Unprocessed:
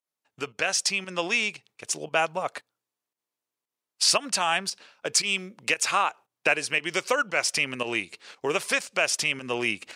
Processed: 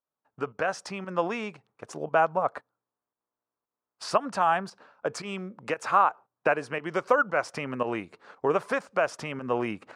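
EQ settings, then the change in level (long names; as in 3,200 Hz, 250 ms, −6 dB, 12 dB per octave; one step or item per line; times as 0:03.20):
parametric band 350 Hz −3 dB 0.3 octaves
high shelf with overshoot 1,800 Hz −9.5 dB, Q 1.5
parametric band 13,000 Hz −14 dB 2.5 octaves
+3.0 dB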